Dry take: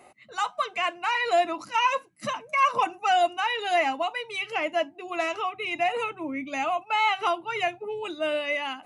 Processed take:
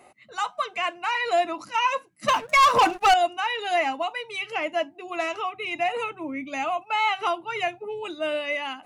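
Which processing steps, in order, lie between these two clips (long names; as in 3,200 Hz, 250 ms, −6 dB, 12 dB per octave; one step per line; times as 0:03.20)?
0:02.28–0:03.14: leveller curve on the samples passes 3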